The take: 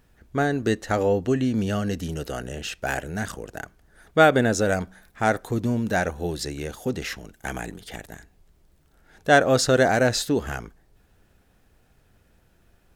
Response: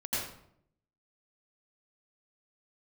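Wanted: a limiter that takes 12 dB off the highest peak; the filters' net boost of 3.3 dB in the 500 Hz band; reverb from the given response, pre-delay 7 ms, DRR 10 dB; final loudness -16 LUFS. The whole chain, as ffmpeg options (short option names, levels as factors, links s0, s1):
-filter_complex "[0:a]equalizer=f=500:t=o:g=4,alimiter=limit=0.224:level=0:latency=1,asplit=2[s0][s1];[1:a]atrim=start_sample=2205,adelay=7[s2];[s1][s2]afir=irnorm=-1:irlink=0,volume=0.158[s3];[s0][s3]amix=inputs=2:normalize=0,volume=2.99"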